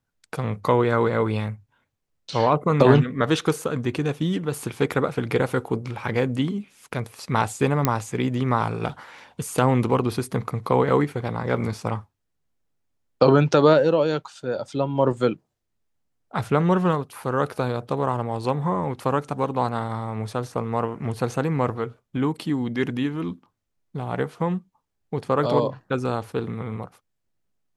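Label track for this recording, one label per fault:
7.850000	7.850000	pop -4 dBFS

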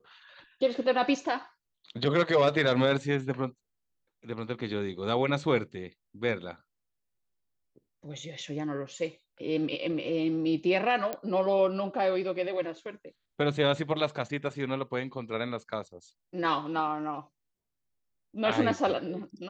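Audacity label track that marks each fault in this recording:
11.130000	11.130000	pop -18 dBFS

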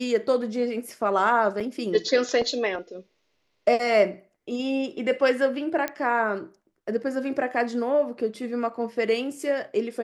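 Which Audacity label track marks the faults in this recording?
1.600000	1.610000	gap 6 ms
5.880000	5.880000	pop -12 dBFS

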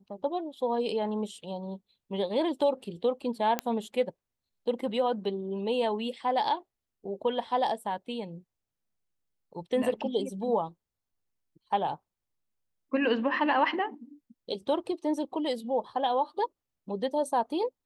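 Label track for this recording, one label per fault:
3.590000	3.590000	pop -12 dBFS

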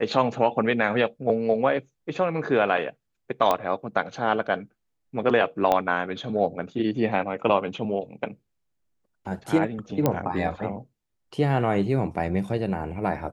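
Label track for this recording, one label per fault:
3.510000	3.510000	pop -9 dBFS
5.720000	5.720000	pop -10 dBFS
10.060000	10.060000	pop -8 dBFS

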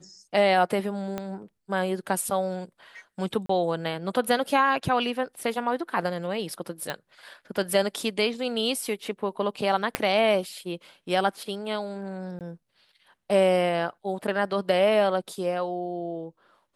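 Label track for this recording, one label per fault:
1.180000	1.180000	pop -17 dBFS
3.460000	3.490000	gap 34 ms
6.900000	6.900000	pop -15 dBFS
9.950000	9.950000	pop -7 dBFS
12.390000	12.410000	gap 18 ms

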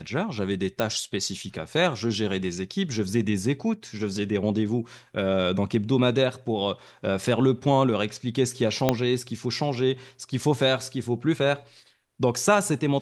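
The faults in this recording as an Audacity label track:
0.800000	0.800000	pop -11 dBFS
8.890000	8.890000	pop -6 dBFS

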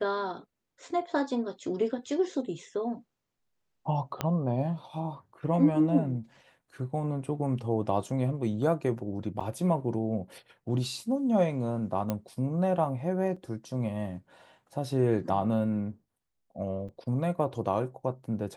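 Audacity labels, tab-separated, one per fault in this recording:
4.210000	4.210000	pop -14 dBFS
9.400000	9.410000	gap 6.6 ms
12.100000	12.100000	pop -16 dBFS
13.360000	13.360000	gap 4.7 ms
16.880000	16.890000	gap 6.7 ms

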